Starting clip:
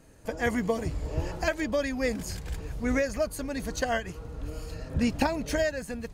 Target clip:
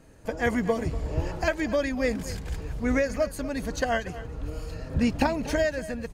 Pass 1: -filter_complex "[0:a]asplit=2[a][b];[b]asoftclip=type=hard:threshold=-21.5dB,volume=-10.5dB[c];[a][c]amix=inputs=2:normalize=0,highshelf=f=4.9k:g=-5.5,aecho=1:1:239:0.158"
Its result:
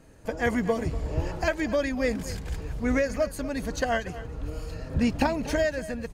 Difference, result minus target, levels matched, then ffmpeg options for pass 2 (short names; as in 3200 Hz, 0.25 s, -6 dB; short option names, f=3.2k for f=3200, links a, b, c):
hard clip: distortion +13 dB
-filter_complex "[0:a]asplit=2[a][b];[b]asoftclip=type=hard:threshold=-15.5dB,volume=-10.5dB[c];[a][c]amix=inputs=2:normalize=0,highshelf=f=4.9k:g=-5.5,aecho=1:1:239:0.158"